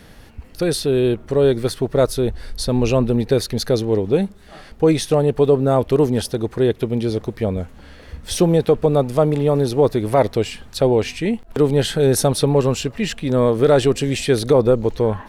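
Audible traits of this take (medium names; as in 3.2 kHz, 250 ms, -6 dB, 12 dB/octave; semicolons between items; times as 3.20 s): noise floor -43 dBFS; spectral tilt -6.5 dB/octave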